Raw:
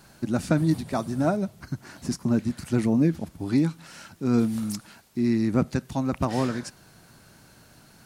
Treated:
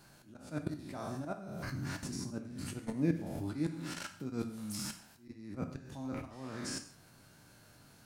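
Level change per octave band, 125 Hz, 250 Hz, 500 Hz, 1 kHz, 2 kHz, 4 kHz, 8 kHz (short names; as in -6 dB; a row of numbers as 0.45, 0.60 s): -13.0, -14.5, -14.5, -13.5, -9.0, -5.5, -4.5 dB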